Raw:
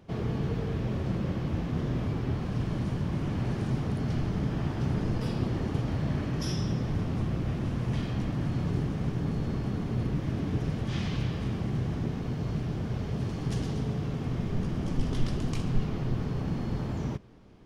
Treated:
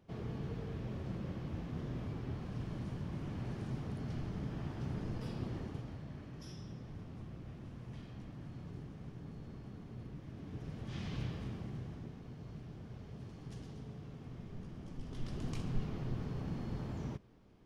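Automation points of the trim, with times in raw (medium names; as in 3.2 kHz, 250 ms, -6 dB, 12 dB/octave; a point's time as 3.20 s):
5.56 s -11 dB
6.06 s -18 dB
10.31 s -18 dB
11.22 s -9 dB
12.17 s -17 dB
15.03 s -17 dB
15.46 s -9 dB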